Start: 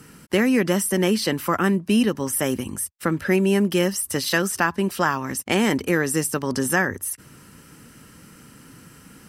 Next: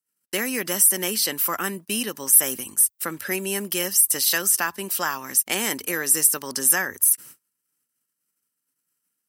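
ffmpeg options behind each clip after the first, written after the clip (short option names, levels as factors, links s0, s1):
-af "aemphasis=mode=production:type=riaa,agate=range=0.00631:threshold=0.02:ratio=16:detection=peak,volume=0.562"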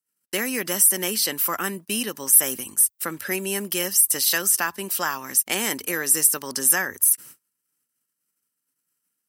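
-af anull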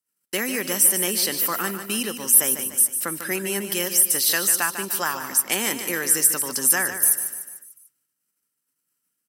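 -af "aecho=1:1:148|296|444|592|740:0.335|0.164|0.0804|0.0394|0.0193"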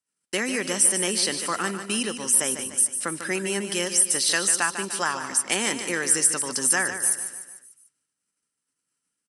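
-af "aresample=22050,aresample=44100"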